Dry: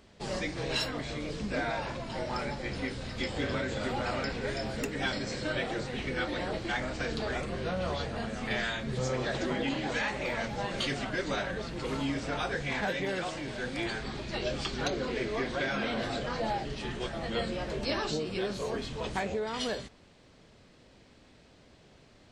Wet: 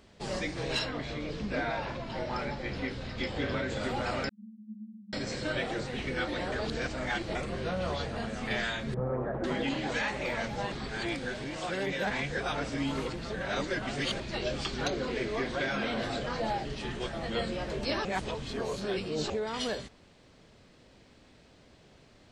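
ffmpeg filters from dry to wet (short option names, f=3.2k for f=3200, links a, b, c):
-filter_complex "[0:a]asettb=1/sr,asplit=3[a][b][c];[a]atrim=end=0.794[d];[b]atrim=start=0.79:end=3.7,asetpts=PTS-STARTPTS,afade=t=in:d=0.004:c=qsin,afade=t=out:st=2.906:d=0.004:c=qsin,lowpass=5k[e];[c]atrim=start=3.696[f];[d][e]acrossfade=d=0.004:c1=hsin:c2=qsin[g];[g][f]acrossfade=d=0.004:c1=qsin:c2=hsin,asettb=1/sr,asplit=3[h][i][j];[h]atrim=end=4.294[k];[i]atrim=start=4.29:end=5.13,asetpts=PTS-STARTPTS,afade=t=in:d=0.004:c=qsin,afade=t=out:st=0.836:d=0.004:c=qsin,asuperpass=centerf=210:order=12:qfactor=6.8[l];[j]atrim=start=5.126[m];[k][l]acrossfade=d=0.004:c1=hsin:c2=qsin[n];[n][m]acrossfade=d=0.004:c1=qsin:c2=hsin,asettb=1/sr,asplit=3[o][p][q];[o]atrim=end=8.944[r];[p]atrim=start=8.94:end=9.44,asetpts=PTS-STARTPTS,afade=t=in:d=0.004:c=qsin,afade=t=out:st=0.496:d=0.004:c=qsin,lowpass=f=1.3k:w=0.5412,lowpass=f=1.3k:w=1.3066[s];[q]atrim=start=9.436[t];[r][s]acrossfade=d=0.004:c1=hsin:c2=qsin[u];[u][t]acrossfade=d=0.004:c1=qsin:c2=hsin,asplit=7[v][w][x][y][z][aa][ab];[v]atrim=end=6.522[ac];[w]atrim=start=6.518:end=7.352,asetpts=PTS-STARTPTS,areverse[ad];[x]atrim=start=7.348:end=10.722[ae];[y]atrim=start=10.718:end=14.202,asetpts=PTS-STARTPTS,areverse[af];[z]atrim=start=14.198:end=18.052[ag];[aa]atrim=start=18.048:end=19.302,asetpts=PTS-STARTPTS,areverse[ah];[ab]atrim=start=19.298[ai];[ac][ad]acrossfade=d=0.004:c1=hsin:c2=hsin[aj];[aj][ae]acrossfade=d=0.004:c1=hsin:c2=hsin[ak];[ak][af]acrossfade=d=0.004:c1=hsin:c2=hsin[al];[al][ag]acrossfade=d=0.004:c1=hsin:c2=hsin[am];[am][ah]acrossfade=d=0.004:c1=hsin:c2=hsin[an];[an][ai]acrossfade=d=0.004:c1=hsin:c2=hsin"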